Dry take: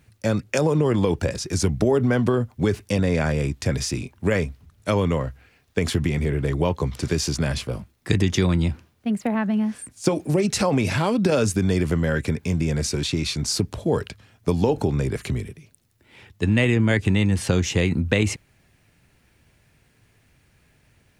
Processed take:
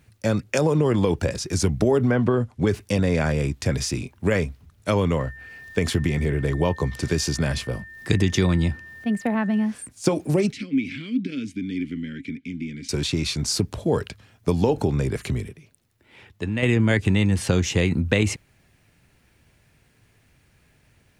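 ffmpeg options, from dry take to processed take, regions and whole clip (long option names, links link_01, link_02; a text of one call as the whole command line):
ffmpeg -i in.wav -filter_complex "[0:a]asettb=1/sr,asplit=3[link_01][link_02][link_03];[link_01]atrim=end=2.114[link_04];[link_02]atrim=start=2.11:end=2.67,asetpts=PTS-STARTPTS,afade=type=in:duration=0.004:curve=qsin,afade=type=out:start_time=0.556:duration=0.004:curve=qsin,lowpass=frequency=11000:width=0.5412,lowpass=frequency=11000:width=1.3066,acrossover=split=2900[link_05][link_06];[link_06]acompressor=threshold=-55dB:ratio=4:attack=1:release=60[link_07];[link_05][link_07]amix=inputs=2:normalize=0[link_08];[link_03]atrim=start=2.666[link_09];[link_04][link_08]acrossfade=duration=0.004:curve1=hsin:curve2=qsin[link_10];[link_10][link_09]acrossfade=duration=0.004:curve1=qsin:curve2=hsin,asettb=1/sr,asplit=3[link_11][link_12][link_13];[link_11]atrim=end=5.194[link_14];[link_12]atrim=start=5.19:end=9.66,asetpts=PTS-STARTPTS,afade=type=in:duration=0.004:curve=qsin,afade=type=out:start_time=4.466:duration=0.004:curve=qsin,acompressor=mode=upward:threshold=-40dB:ratio=2.5:attack=3.2:release=140:knee=2.83:detection=peak,aeval=exprs='val(0)+0.01*sin(2*PI*1800*n/s)':channel_layout=same[link_15];[link_13]atrim=start=9.656[link_16];[link_14][link_15]acrossfade=duration=0.004:curve1=hsin:curve2=qsin[link_17];[link_17][link_16]acrossfade=duration=0.004:curve1=qsin:curve2=hsin,asettb=1/sr,asplit=3[link_18][link_19][link_20];[link_18]atrim=end=10.524[link_21];[link_19]atrim=start=10.52:end=12.89,asetpts=PTS-STARTPTS,afade=type=in:duration=0.004:curve=qsin,afade=type=out:start_time=2.366:duration=0.004:curve=qsin,equalizer=frequency=630:width_type=o:width=1.2:gain=-13.5,acontrast=60,asplit=3[link_22][link_23][link_24];[link_22]bandpass=frequency=270:width_type=q:width=8,volume=0dB[link_25];[link_23]bandpass=frequency=2290:width_type=q:width=8,volume=-6dB[link_26];[link_24]bandpass=frequency=3010:width_type=q:width=8,volume=-9dB[link_27];[link_25][link_26][link_27]amix=inputs=3:normalize=0[link_28];[link_20]atrim=start=12.886[link_29];[link_21][link_28]acrossfade=duration=0.004:curve1=hsin:curve2=qsin[link_30];[link_30][link_29]acrossfade=duration=0.004:curve1=qsin:curve2=hsin,asettb=1/sr,asplit=3[link_31][link_32][link_33];[link_31]atrim=end=15.494[link_34];[link_32]atrim=start=15.49:end=16.63,asetpts=PTS-STARTPTS,afade=type=in:duration=0.004:curve=qsin,afade=type=out:start_time=1.136:duration=0.004:curve=qsin,bass=frequency=250:gain=-3,treble=frequency=4000:gain=-4,acompressor=threshold=-25dB:ratio=2:attack=3.2:release=140:knee=1:detection=peak[link_35];[link_33]atrim=start=16.626[link_36];[link_34][link_35]acrossfade=duration=0.004:curve1=hsin:curve2=qsin[link_37];[link_37][link_36]acrossfade=duration=0.004:curve1=qsin:curve2=hsin" out.wav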